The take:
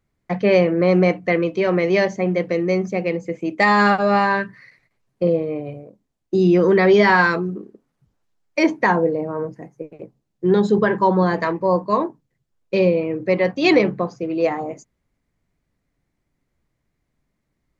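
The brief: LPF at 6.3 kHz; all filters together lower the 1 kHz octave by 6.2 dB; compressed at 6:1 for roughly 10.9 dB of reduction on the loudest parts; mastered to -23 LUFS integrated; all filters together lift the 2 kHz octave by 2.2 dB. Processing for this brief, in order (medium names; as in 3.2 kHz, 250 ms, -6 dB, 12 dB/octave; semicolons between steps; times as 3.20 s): low-pass 6.3 kHz; peaking EQ 1 kHz -9 dB; peaking EQ 2 kHz +5.5 dB; compression 6:1, threshold -23 dBFS; trim +5 dB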